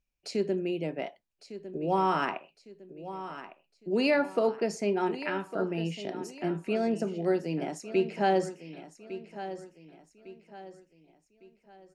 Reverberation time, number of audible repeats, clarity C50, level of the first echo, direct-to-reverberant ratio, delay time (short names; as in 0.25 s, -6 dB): none, 3, none, -13.0 dB, none, 1.155 s